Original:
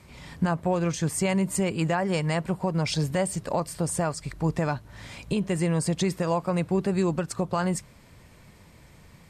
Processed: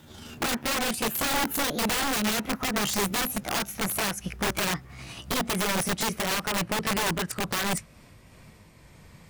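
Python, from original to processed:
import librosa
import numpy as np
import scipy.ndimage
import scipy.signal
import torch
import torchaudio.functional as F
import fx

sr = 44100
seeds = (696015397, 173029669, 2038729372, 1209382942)

y = fx.pitch_glide(x, sr, semitones=7.5, runs='ending unshifted')
y = fx.dynamic_eq(y, sr, hz=1900.0, q=1.3, threshold_db=-47.0, ratio=4.0, max_db=5)
y = (np.mod(10.0 ** (22.5 / 20.0) * y + 1.0, 2.0) - 1.0) / 10.0 ** (22.5 / 20.0)
y = F.gain(torch.from_numpy(y), 1.5).numpy()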